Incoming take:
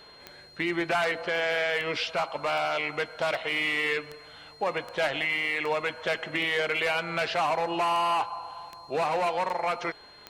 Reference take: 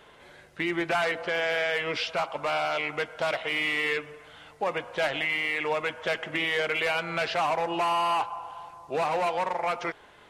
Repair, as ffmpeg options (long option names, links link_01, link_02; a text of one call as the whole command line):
ffmpeg -i in.wav -af "adeclick=threshold=4,bandreject=frequency=4200:width=30" out.wav